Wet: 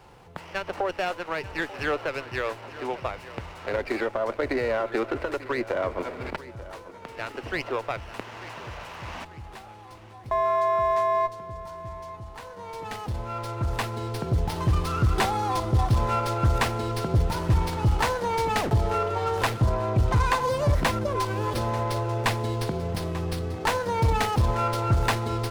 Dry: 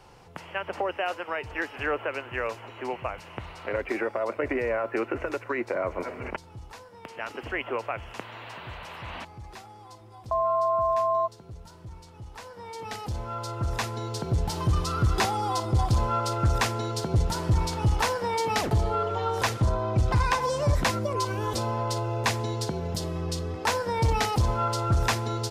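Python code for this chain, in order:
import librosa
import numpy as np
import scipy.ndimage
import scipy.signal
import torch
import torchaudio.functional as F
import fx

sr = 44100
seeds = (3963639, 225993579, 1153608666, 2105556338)

y = fx.echo_feedback(x, sr, ms=890, feedback_pct=39, wet_db=-16.5)
y = fx.running_max(y, sr, window=5)
y = F.gain(torch.from_numpy(y), 1.5).numpy()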